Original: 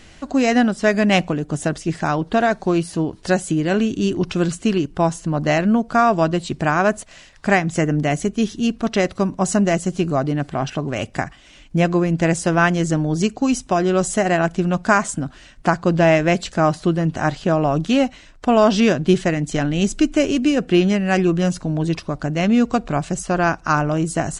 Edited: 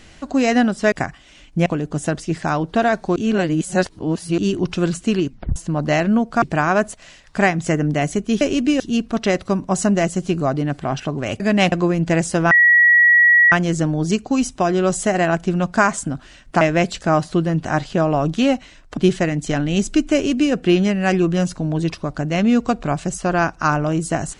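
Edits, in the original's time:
0:00.92–0:01.24: swap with 0:11.10–0:11.84
0:02.74–0:03.96: reverse
0:04.86: tape stop 0.28 s
0:06.00–0:06.51: remove
0:12.63: insert tone 1,920 Hz −8.5 dBFS 1.01 s
0:15.72–0:16.12: remove
0:18.48–0:19.02: remove
0:20.19–0:20.58: duplicate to 0:08.50

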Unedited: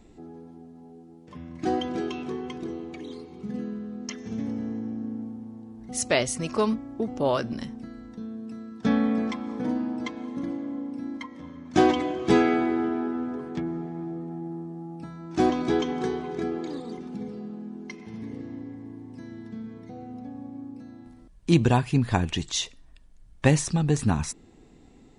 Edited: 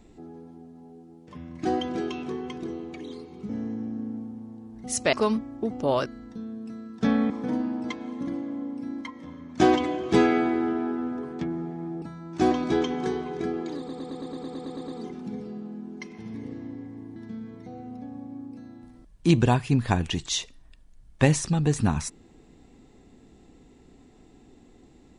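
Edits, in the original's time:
0:03.49–0:04.54: remove
0:06.18–0:06.50: remove
0:07.43–0:07.88: remove
0:09.12–0:09.46: remove
0:14.18–0:15.00: remove
0:16.76: stutter 0.11 s, 11 plays
0:19.04–0:19.39: remove

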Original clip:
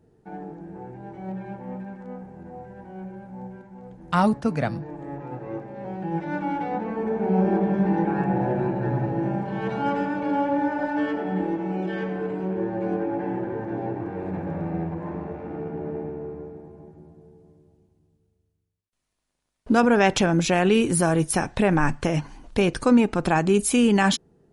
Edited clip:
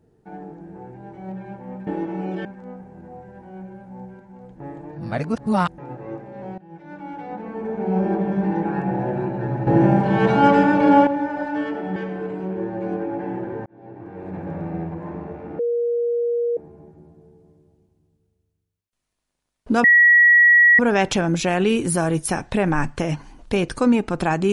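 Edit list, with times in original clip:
0:04.02–0:05.20: reverse
0:06.00–0:07.40: fade in, from −20 dB
0:09.09–0:10.49: clip gain +10.5 dB
0:11.38–0:11.96: move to 0:01.87
0:13.66–0:14.50: fade in linear
0:15.59–0:16.57: beep over 474 Hz −18.5 dBFS
0:19.84: insert tone 1,920 Hz −9 dBFS 0.95 s

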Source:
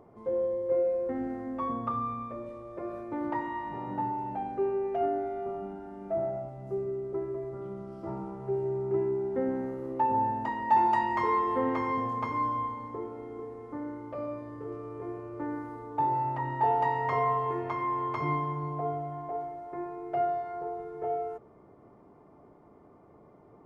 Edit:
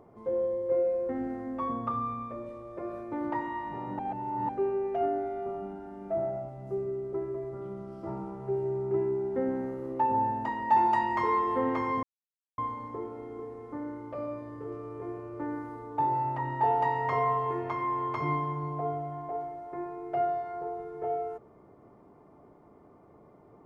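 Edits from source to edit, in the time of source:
0:03.99–0:04.49: reverse
0:12.03–0:12.58: silence

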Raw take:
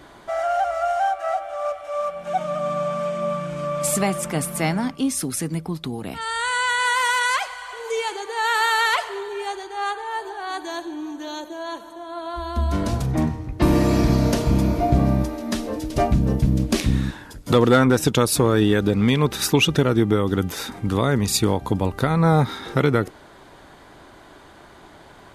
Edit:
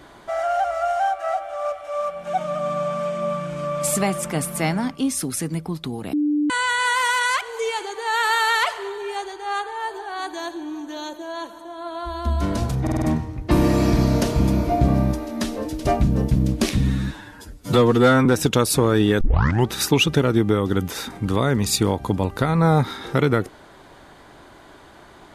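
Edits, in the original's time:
0:06.13–0:06.50: beep over 296 Hz −17 dBFS
0:07.41–0:07.72: remove
0:13.13: stutter 0.05 s, 5 plays
0:16.88–0:17.87: time-stretch 1.5×
0:18.82: tape start 0.49 s

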